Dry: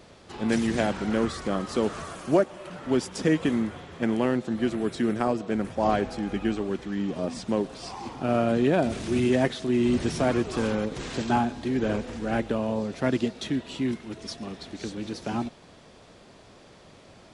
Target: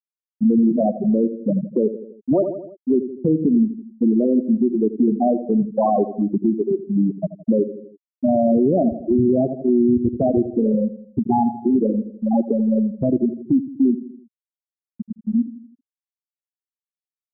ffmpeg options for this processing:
ffmpeg -i in.wav -filter_complex "[0:a]afwtdn=0.0398,afftfilt=real='re*gte(hypot(re,im),0.282)':imag='im*gte(hypot(re,im),0.282)':win_size=1024:overlap=0.75,asplit=2[link_01][link_02];[link_02]adelay=82,lowpass=frequency=1600:poles=1,volume=-15dB,asplit=2[link_03][link_04];[link_04]adelay=82,lowpass=frequency=1600:poles=1,volume=0.46,asplit=2[link_05][link_06];[link_06]adelay=82,lowpass=frequency=1600:poles=1,volume=0.46,asplit=2[link_07][link_08];[link_08]adelay=82,lowpass=frequency=1600:poles=1,volume=0.46[link_09];[link_01][link_03][link_05][link_07][link_09]amix=inputs=5:normalize=0,asplit=2[link_10][link_11];[link_11]acompressor=threshold=-37dB:ratio=6,volume=2dB[link_12];[link_10][link_12]amix=inputs=2:normalize=0,aemphasis=mode=production:type=50kf,alimiter=level_in=18dB:limit=-1dB:release=50:level=0:latency=1,volume=-8.5dB" out.wav

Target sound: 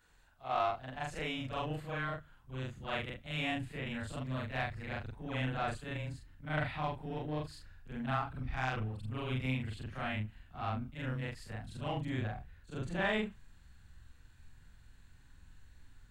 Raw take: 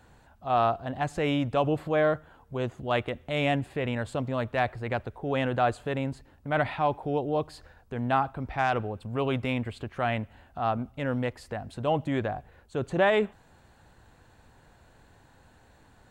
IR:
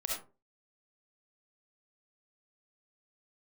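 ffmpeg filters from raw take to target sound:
-filter_complex "[0:a]afftfilt=real='re':imag='-im':win_size=4096:overlap=0.75,equalizer=frequency=120:width=0.3:gain=-13.5,acrossover=split=190|920|2300[link_01][link_02][link_03][link_04];[link_02]adynamicsmooth=sensitivity=7:basefreq=600[link_05];[link_01][link_05][link_03][link_04]amix=inputs=4:normalize=0,asubboost=boost=7.5:cutoff=180"

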